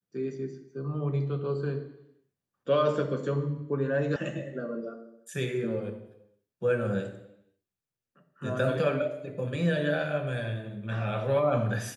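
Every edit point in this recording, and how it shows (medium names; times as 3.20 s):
4.16 s: sound stops dead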